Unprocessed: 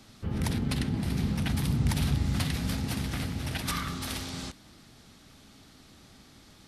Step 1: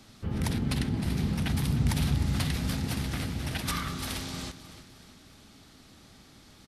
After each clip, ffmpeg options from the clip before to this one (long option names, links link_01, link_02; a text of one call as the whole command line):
ffmpeg -i in.wav -af "aecho=1:1:307|614|921|1228:0.2|0.0918|0.0422|0.0194" out.wav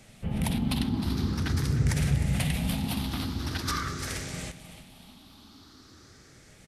ffmpeg -i in.wav -af "afftfilt=real='re*pow(10,9/40*sin(2*PI*(0.51*log(max(b,1)*sr/1024/100)/log(2)-(0.45)*(pts-256)/sr)))':imag='im*pow(10,9/40*sin(2*PI*(0.51*log(max(b,1)*sr/1024/100)/log(2)-(0.45)*(pts-256)/sr)))':win_size=1024:overlap=0.75" out.wav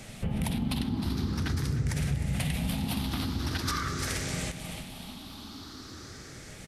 ffmpeg -i in.wav -af "acompressor=threshold=-39dB:ratio=3,volume=8.5dB" out.wav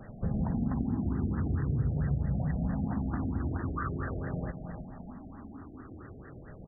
ffmpeg -i in.wav -af "bandreject=frequency=870:width=22,afftfilt=real='re*lt(b*sr/1024,740*pow(2000/740,0.5+0.5*sin(2*PI*4.5*pts/sr)))':imag='im*lt(b*sr/1024,740*pow(2000/740,0.5+0.5*sin(2*PI*4.5*pts/sr)))':win_size=1024:overlap=0.75" out.wav